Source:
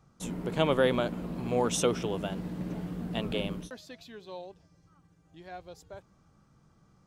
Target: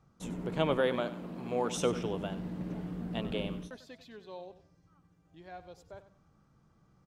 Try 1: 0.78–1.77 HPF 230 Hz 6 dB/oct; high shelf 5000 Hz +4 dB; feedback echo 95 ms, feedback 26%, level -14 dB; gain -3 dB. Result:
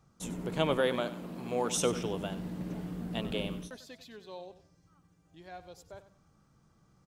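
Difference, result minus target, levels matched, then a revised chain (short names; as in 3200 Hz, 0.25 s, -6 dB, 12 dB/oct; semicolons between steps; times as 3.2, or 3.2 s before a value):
8000 Hz band +6.5 dB
0.78–1.77 HPF 230 Hz 6 dB/oct; high shelf 5000 Hz -7 dB; feedback echo 95 ms, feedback 26%, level -14 dB; gain -3 dB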